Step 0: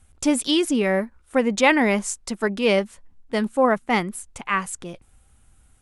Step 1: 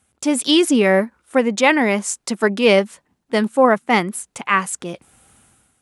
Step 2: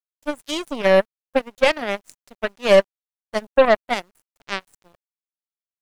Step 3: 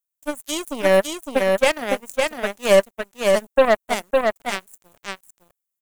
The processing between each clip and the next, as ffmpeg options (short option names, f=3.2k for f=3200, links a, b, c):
-af "highpass=160,dynaudnorm=f=110:g=7:m=12.5dB,volume=-1dB"
-af "superequalizer=8b=3.16:10b=0.631,aeval=exprs='1.41*(cos(1*acos(clip(val(0)/1.41,-1,1)))-cos(1*PI/2))+0.282*(cos(2*acos(clip(val(0)/1.41,-1,1)))-cos(2*PI/2))+0.2*(cos(7*acos(clip(val(0)/1.41,-1,1)))-cos(7*PI/2))':c=same,acrusher=bits=8:mix=0:aa=0.000001,volume=-7dB"
-af "aecho=1:1:558:0.668,aexciter=amount=2.6:drive=8.1:freq=6.6k,volume=-1dB"